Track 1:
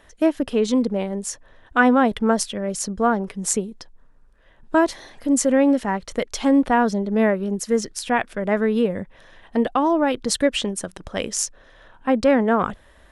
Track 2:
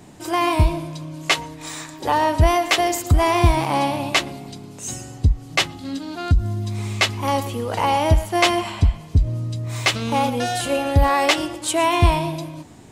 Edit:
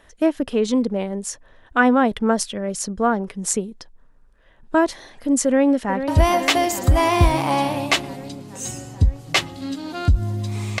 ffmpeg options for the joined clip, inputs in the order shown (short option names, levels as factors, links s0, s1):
-filter_complex "[0:a]apad=whole_dur=10.8,atrim=end=10.8,atrim=end=6.082[s0];[1:a]atrim=start=2.308:end=7.03[s1];[s0][s1]acrossfade=d=0.004:c1=hsin:c2=hsin,asplit=2[s2][s3];[s3]afade=t=in:st=5.45:d=0.01,afade=t=out:st=6.08:d=0.01,aecho=0:1:440|880|1320|1760|2200|2640|3080|3520|3960|4400|4840|5280:0.334965|0.251224|0.188418|0.141314|0.105985|0.0794889|0.0596167|0.0447125|0.0335344|0.0251508|0.0188631|0.0141473[s4];[s2][s4]amix=inputs=2:normalize=0"